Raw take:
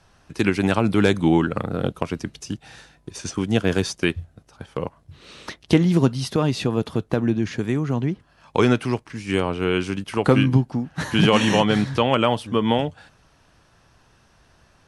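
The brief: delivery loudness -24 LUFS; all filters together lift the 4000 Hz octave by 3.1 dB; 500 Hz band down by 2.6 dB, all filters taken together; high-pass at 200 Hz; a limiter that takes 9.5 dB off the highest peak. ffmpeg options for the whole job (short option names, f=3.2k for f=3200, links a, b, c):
-af "highpass=200,equalizer=f=500:t=o:g=-3,equalizer=f=4k:t=o:g=4.5,volume=2.5dB,alimiter=limit=-10.5dB:level=0:latency=1"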